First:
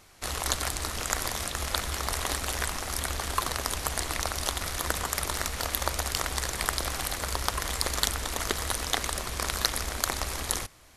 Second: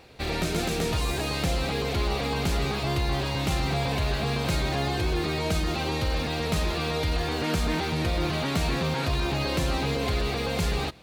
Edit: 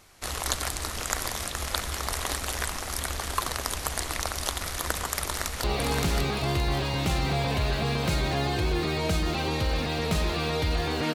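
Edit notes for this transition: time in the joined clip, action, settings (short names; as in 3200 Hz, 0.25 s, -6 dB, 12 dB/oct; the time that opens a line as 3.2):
first
5.22–5.64 echo throw 0.57 s, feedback 30%, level -3.5 dB
5.64 switch to second from 2.05 s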